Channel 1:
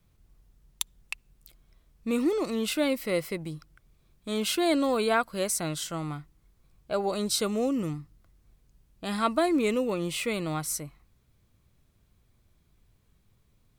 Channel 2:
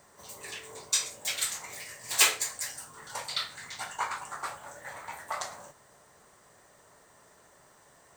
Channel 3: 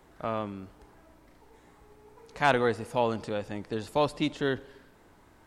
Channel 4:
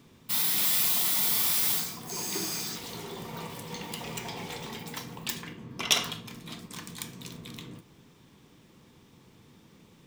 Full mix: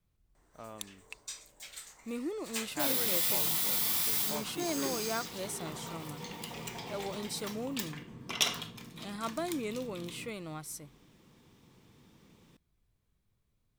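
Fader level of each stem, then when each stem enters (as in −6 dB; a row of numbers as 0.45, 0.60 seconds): −11.0, −16.0, −15.5, −4.5 decibels; 0.00, 0.35, 0.35, 2.50 seconds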